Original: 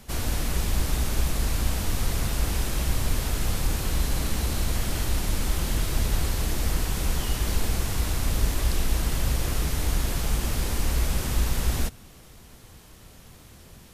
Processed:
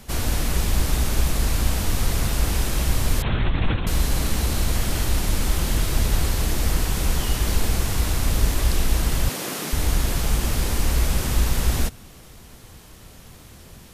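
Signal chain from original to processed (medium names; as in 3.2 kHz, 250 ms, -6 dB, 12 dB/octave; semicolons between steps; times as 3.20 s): 3.22–3.87 s: LPC vocoder at 8 kHz whisper; 9.29–9.73 s: high-pass 190 Hz 24 dB/octave; trim +4 dB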